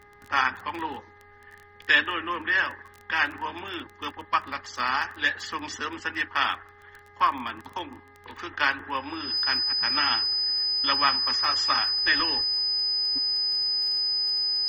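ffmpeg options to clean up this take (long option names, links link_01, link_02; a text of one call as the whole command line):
ffmpeg -i in.wav -af "adeclick=threshold=4,bandreject=frequency=410.6:width_type=h:width=4,bandreject=frequency=821.2:width_type=h:width=4,bandreject=frequency=1231.8:width_type=h:width=4,bandreject=frequency=1642.4:width_type=h:width=4,bandreject=frequency=2053:width_type=h:width=4,bandreject=frequency=5000:width=30" out.wav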